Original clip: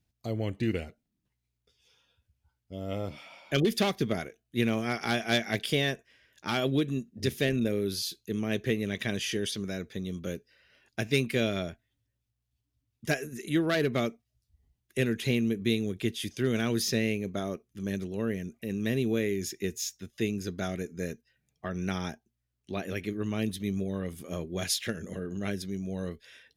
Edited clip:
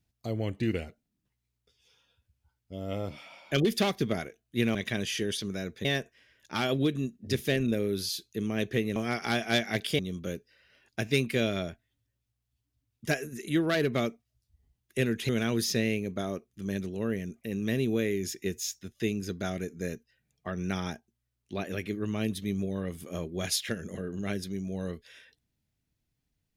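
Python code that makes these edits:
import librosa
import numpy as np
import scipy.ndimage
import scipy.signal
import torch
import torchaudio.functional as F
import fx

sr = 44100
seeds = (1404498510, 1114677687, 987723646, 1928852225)

y = fx.edit(x, sr, fx.swap(start_s=4.75, length_s=1.03, other_s=8.89, other_length_s=1.1),
    fx.cut(start_s=15.29, length_s=1.18), tone=tone)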